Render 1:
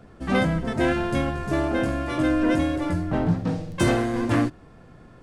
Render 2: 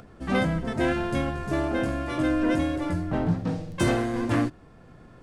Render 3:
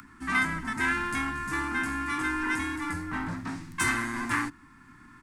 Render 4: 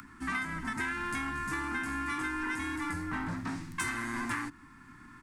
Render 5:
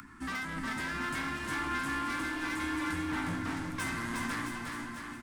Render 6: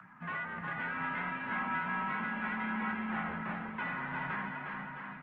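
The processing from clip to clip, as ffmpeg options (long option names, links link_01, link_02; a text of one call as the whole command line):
ffmpeg -i in.wav -af "acompressor=mode=upward:threshold=-42dB:ratio=2.5,volume=-2.5dB" out.wav
ffmpeg -i in.wav -filter_complex "[0:a]firequalizer=gain_entry='entry(180,0);entry(270,11);entry(560,-29);entry(920,11);entry(2000,15);entry(3000,5);entry(8000,14)':delay=0.05:min_phase=1,acrossover=split=100|650|1700[link_01][link_02][link_03][link_04];[link_02]asoftclip=type=tanh:threshold=-26.5dB[link_05];[link_01][link_05][link_03][link_04]amix=inputs=4:normalize=0,volume=-7.5dB" out.wav
ffmpeg -i in.wav -af "acompressor=threshold=-31dB:ratio=6" out.wav
ffmpeg -i in.wav -filter_complex "[0:a]asoftclip=type=hard:threshold=-33.5dB,asplit=2[link_01][link_02];[link_02]aecho=0:1:360|666|926.1|1147|1335:0.631|0.398|0.251|0.158|0.1[link_03];[link_01][link_03]amix=inputs=2:normalize=0" out.wav
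ffmpeg -i in.wav -af "highpass=frequency=290:width_type=q:width=0.5412,highpass=frequency=290:width_type=q:width=1.307,lowpass=frequency=2800:width_type=q:width=0.5176,lowpass=frequency=2800:width_type=q:width=0.7071,lowpass=frequency=2800:width_type=q:width=1.932,afreqshift=-92" -ar 48000 -c:a libopus -b:a 20k out.opus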